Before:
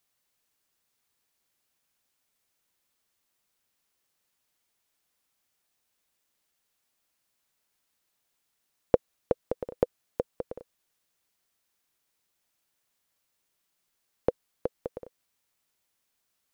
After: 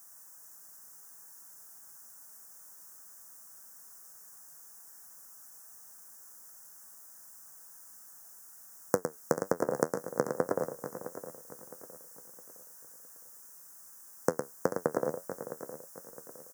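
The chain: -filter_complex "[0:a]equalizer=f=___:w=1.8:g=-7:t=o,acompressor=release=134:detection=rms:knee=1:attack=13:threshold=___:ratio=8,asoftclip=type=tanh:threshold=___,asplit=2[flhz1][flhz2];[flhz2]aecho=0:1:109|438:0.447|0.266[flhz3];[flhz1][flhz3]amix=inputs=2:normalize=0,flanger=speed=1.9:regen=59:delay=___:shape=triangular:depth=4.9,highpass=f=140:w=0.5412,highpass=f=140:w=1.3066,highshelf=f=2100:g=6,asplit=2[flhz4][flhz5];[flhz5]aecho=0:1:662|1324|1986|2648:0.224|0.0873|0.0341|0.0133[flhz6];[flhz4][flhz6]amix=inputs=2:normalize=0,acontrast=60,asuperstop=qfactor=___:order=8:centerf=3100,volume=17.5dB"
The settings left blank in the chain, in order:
360, -42dB, -23dB, 10, 0.76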